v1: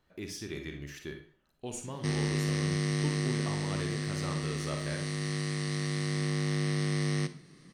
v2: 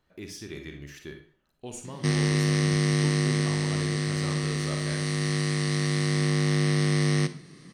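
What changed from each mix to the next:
background +6.5 dB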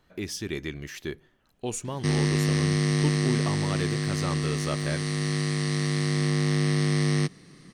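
speech +10.5 dB; reverb: off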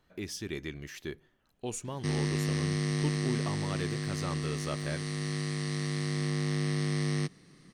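speech -5.0 dB; background -6.5 dB

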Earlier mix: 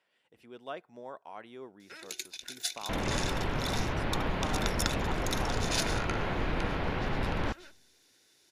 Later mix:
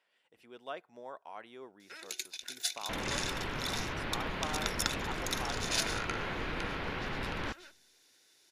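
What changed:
second sound: add peaking EQ 700 Hz -5.5 dB 1.2 oct; master: add bass shelf 300 Hz -9 dB

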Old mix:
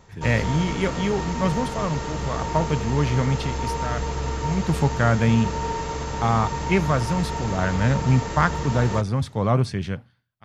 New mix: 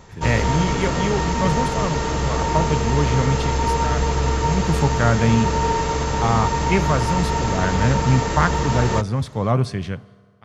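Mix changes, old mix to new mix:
background +7.0 dB; reverb: on, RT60 1.9 s

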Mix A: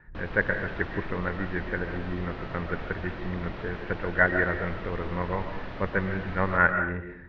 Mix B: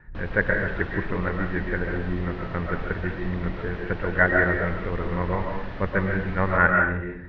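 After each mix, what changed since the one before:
speech: send +7.0 dB; master: add bass shelf 170 Hz +4.5 dB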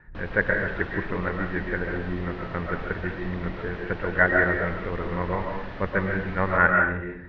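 master: add bass shelf 170 Hz -4.5 dB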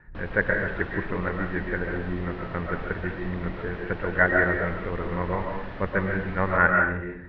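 master: add distance through air 100 m

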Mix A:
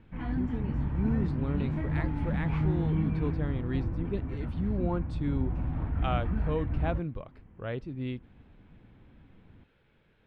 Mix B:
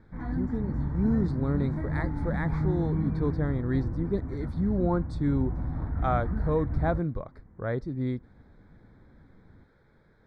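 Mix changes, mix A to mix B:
speech +5.0 dB; master: add Butterworth band-stop 2.8 kHz, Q 1.5

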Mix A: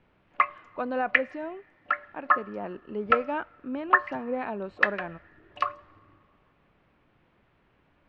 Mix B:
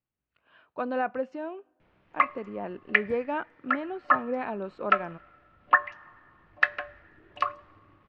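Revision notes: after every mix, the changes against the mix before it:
background: entry +1.80 s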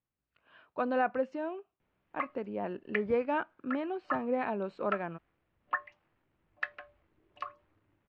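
background -11.0 dB; reverb: off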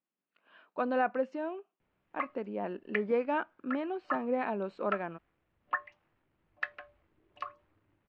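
speech: add brick-wall FIR high-pass 160 Hz

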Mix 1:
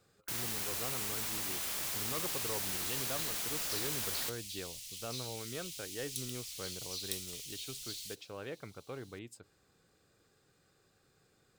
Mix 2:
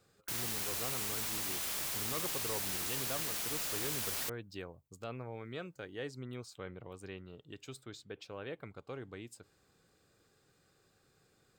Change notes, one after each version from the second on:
second sound: muted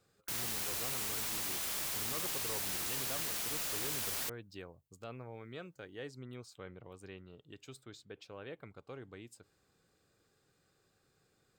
speech -3.5 dB

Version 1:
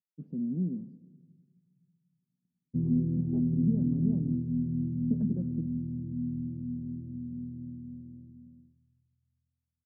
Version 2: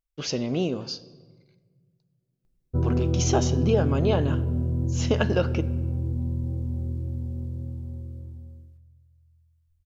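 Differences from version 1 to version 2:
background -4.5 dB; master: remove Butterworth band-pass 200 Hz, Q 2.2

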